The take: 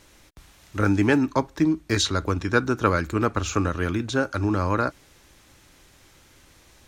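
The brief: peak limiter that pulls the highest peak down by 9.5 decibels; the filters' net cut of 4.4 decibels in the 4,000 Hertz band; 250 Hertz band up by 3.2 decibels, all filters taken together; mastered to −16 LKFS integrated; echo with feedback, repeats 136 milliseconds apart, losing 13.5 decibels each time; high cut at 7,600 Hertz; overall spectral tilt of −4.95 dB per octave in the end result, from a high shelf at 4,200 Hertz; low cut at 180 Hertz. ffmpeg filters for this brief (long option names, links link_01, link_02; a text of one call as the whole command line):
ffmpeg -i in.wav -af "highpass=180,lowpass=7600,equalizer=frequency=250:width_type=o:gain=5,equalizer=frequency=4000:width_type=o:gain=-8,highshelf=frequency=4200:gain=6,alimiter=limit=-14dB:level=0:latency=1,aecho=1:1:136|272:0.211|0.0444,volume=9dB" out.wav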